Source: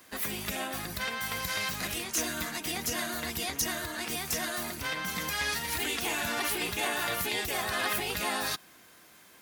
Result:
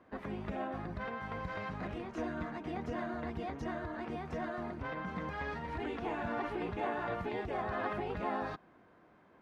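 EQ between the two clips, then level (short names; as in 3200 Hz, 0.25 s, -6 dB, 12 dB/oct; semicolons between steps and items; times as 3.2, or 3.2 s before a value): LPF 1000 Hz 12 dB/oct; 0.0 dB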